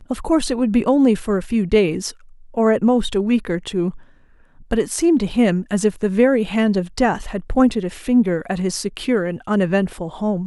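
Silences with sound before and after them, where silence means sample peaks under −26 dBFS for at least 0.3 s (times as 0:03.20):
0:02.11–0:02.57
0:03.90–0:04.71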